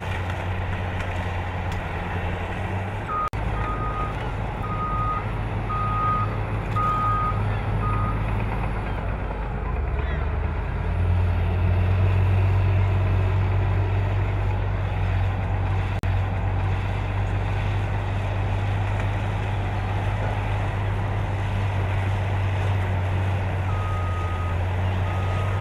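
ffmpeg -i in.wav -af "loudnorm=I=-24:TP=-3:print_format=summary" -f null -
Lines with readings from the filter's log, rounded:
Input Integrated:    -25.2 LUFS
Input True Peak:     -11.1 dBTP
Input LRA:             4.5 LU
Input Threshold:     -35.2 LUFS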